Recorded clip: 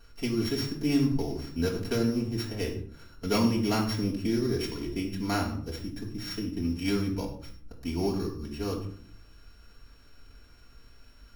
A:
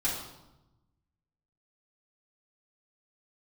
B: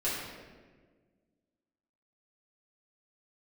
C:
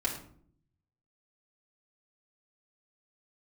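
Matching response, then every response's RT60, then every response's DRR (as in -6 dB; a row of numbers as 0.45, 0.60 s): C; 0.95, 1.5, 0.60 s; -8.5, -10.5, -3.5 dB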